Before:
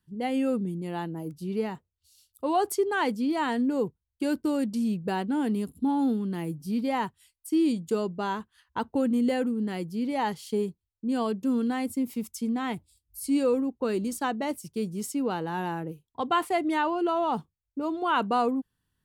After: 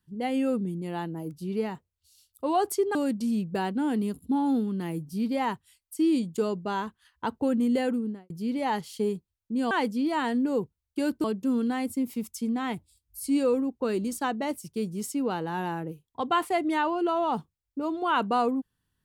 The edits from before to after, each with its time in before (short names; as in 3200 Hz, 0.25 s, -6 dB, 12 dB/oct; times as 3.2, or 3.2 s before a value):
2.95–4.48 move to 11.24
9.49–9.83 studio fade out